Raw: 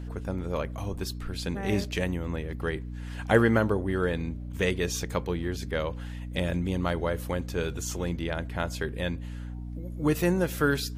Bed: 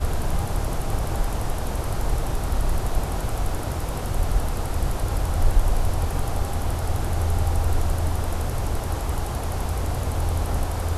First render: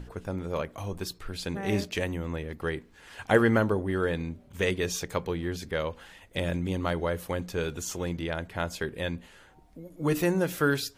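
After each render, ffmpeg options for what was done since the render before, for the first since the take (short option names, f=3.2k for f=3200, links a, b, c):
-af "bandreject=f=60:t=h:w=6,bandreject=f=120:t=h:w=6,bandreject=f=180:t=h:w=6,bandreject=f=240:t=h:w=6,bandreject=f=300:t=h:w=6"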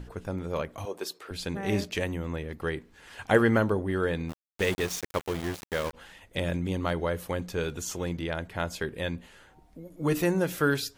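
-filter_complex "[0:a]asettb=1/sr,asplit=3[a][b][c];[a]atrim=end=0.854[d];[b]atrim=start=0.85:end=1.31,asetpts=PTS-STARTPTS,afade=t=in:d=0.004:c=qsin,afade=t=out:st=0.456:d=0.004:c=qsin,highpass=f=440:t=q:w=1.6[e];[c]atrim=start=1.306[f];[d][e]acrossfade=d=0.004:c1=hsin:c2=qsin[g];[g][f]acrossfade=d=0.004:c1=qsin:c2=hsin,asplit=3[h][i][j];[h]afade=t=out:st=4.28:d=0.02[k];[i]aeval=exprs='val(0)*gte(abs(val(0)),0.0251)':c=same,afade=t=in:st=4.28:d=0.02,afade=t=out:st=5.93:d=0.02[l];[j]afade=t=in:st=5.93:d=0.02[m];[k][l][m]amix=inputs=3:normalize=0"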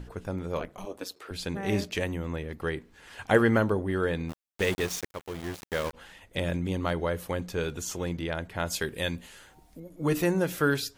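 -filter_complex "[0:a]asplit=3[a][b][c];[a]afade=t=out:st=0.59:d=0.02[d];[b]aeval=exprs='val(0)*sin(2*PI*93*n/s)':c=same,afade=t=in:st=0.59:d=0.02,afade=t=out:st=1.15:d=0.02[e];[c]afade=t=in:st=1.15:d=0.02[f];[d][e][f]amix=inputs=3:normalize=0,asettb=1/sr,asplit=3[g][h][i];[g]atrim=end=8.664[j];[h]atrim=start=8.66:end=9.8,asetpts=PTS-STARTPTS,afade=t=in:d=0.004:c=qsin,afade=t=out:st=1.136:d=0.004:c=qsin,highshelf=f=3.4k:g=11[k];[i]atrim=start=9.796[l];[j][k]acrossfade=d=0.004:c1=hsin:c2=qsin[m];[m][l]acrossfade=d=0.004:c1=qsin:c2=hsin,asplit=2[n][o];[n]atrim=end=5.08,asetpts=PTS-STARTPTS,afade=t=out:st=5.076:d=0.004:c=hsin:silence=0.237137[p];[o]atrim=start=5.08,asetpts=PTS-STARTPTS,afade=t=in:d=0.67:silence=0.237137[q];[p][q]concat=n=2:v=0:a=1"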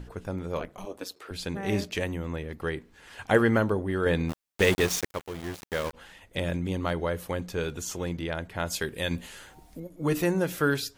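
-filter_complex "[0:a]asplit=5[a][b][c][d][e];[a]atrim=end=4.062[f];[b]atrim=start=4.058:end=5.222,asetpts=PTS-STARTPTS,volume=5dB[g];[c]atrim=start=5.218:end=9.112[h];[d]atrim=start=9.108:end=9.872,asetpts=PTS-STARTPTS,volume=4.5dB[i];[e]atrim=start=9.868[j];[f][g]acrossfade=d=0.004:c1=hsin:c2=hsin[k];[k][h]acrossfade=d=0.004:c1=hsin:c2=hsin[l];[l][i]acrossfade=d=0.004:c1=hsin:c2=hsin[m];[m][j]acrossfade=d=0.004:c1=hsin:c2=hsin"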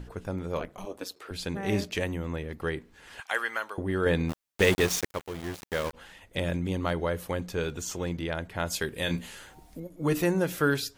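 -filter_complex "[0:a]asettb=1/sr,asplit=3[a][b][c];[a]atrim=end=3.204[d];[b]atrim=start=3.2:end=3.78,asetpts=PTS-STARTPTS,afade=t=in:d=0.004:c=qsin,afade=t=out:st=0.576:d=0.004:c=qsin,highpass=1.2k[e];[c]atrim=start=3.776[f];[d][e]acrossfade=d=0.004:c1=hsin:c2=qsin[g];[g][f]acrossfade=d=0.004:c1=qsin:c2=hsin,asettb=1/sr,asplit=3[h][i][j];[h]atrim=end=7.564[k];[i]atrim=start=7.56:end=8.14,asetpts=PTS-STARTPTS,afade=t=in:d=0.004:c=qsin,afade=t=out:st=0.576:d=0.004:c=qsin,equalizer=f=11k:w=6.2:g=-13[l];[j]atrim=start=8.136[m];[k][l]acrossfade=d=0.004:c1=hsin:c2=qsin[n];[n][m]acrossfade=d=0.004:c1=qsin:c2=hsin,asettb=1/sr,asplit=3[o][p][q];[o]atrim=end=8.934[r];[p]atrim=start=8.93:end=9.35,asetpts=PTS-STARTPTS,afade=t=in:d=0.004:c=qsin,afade=t=out:st=0.416:d=0.004:c=qsin,asplit=2[s][t];[t]adelay=29,volume=-8dB[u];[s][u]amix=inputs=2:normalize=0,atrim=end_sample=18522[v];[q]atrim=start=9.346[w];[r][v]acrossfade=d=0.004:c1=hsin:c2=qsin[x];[x][w]acrossfade=d=0.004:c1=qsin:c2=hsin"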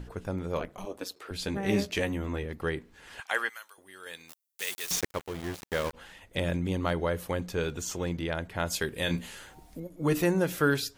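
-filter_complex "[0:a]asettb=1/sr,asplit=3[a][b][c];[a]atrim=end=1.384[d];[b]atrim=start=1.38:end=2.46,asetpts=PTS-STARTPTS,afade=t=in:d=0.004:c=qsin,afade=t=out:st=1.076:d=0.004:c=qsin,asplit=2[e][f];[f]adelay=15,volume=-6.5dB[g];[e][g]amix=inputs=2:normalize=0,atrim=end_sample=47628[h];[c]atrim=start=2.456[i];[d][h]acrossfade=d=0.004:c1=hsin:c2=qsin[j];[j][i]acrossfade=d=0.004:c1=qsin:c2=hsin,asettb=1/sr,asplit=3[k][l][m];[k]atrim=end=3.494[n];[l]atrim=start=3.49:end=4.91,asetpts=PTS-STARTPTS,afade=t=in:d=0.004:c=qsin,afade=t=out:st=1.416:d=0.004:c=qsin,aderivative[o];[m]atrim=start=4.906[p];[n][o]acrossfade=d=0.004:c1=hsin:c2=qsin[q];[q][p]acrossfade=d=0.004:c1=qsin:c2=hsin"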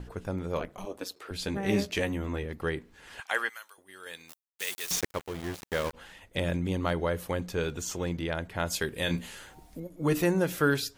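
-af "agate=range=-33dB:threshold=-53dB:ratio=3:detection=peak"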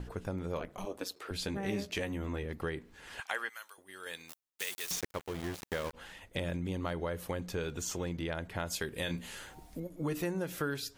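-af "acompressor=threshold=-34dB:ratio=3"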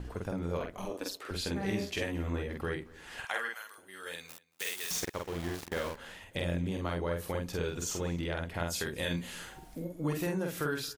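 -filter_complex "[0:a]asplit=2[a][b];[b]adelay=47,volume=-2.5dB[c];[a][c]amix=inputs=2:normalize=0,asplit=2[d][e];[e]adelay=227.4,volume=-22dB,highshelf=f=4k:g=-5.12[f];[d][f]amix=inputs=2:normalize=0"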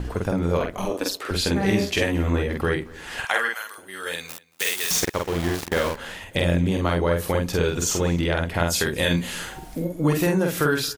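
-af "volume=12dB"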